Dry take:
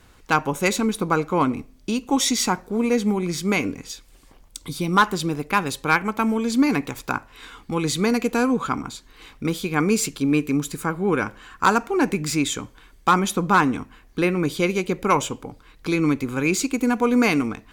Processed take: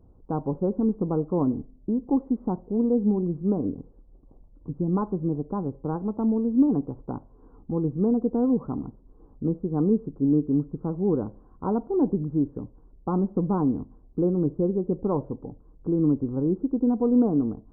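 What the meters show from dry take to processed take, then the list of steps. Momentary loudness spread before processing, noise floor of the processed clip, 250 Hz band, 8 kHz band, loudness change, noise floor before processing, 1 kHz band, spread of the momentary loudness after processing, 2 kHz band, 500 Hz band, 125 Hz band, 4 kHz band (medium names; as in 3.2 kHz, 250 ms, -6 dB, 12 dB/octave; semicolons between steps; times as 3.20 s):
12 LU, -54 dBFS, -1.0 dB, under -40 dB, -3.5 dB, -52 dBFS, -14.0 dB, 12 LU, under -35 dB, -3.0 dB, -0.5 dB, under -40 dB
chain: Gaussian low-pass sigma 13 samples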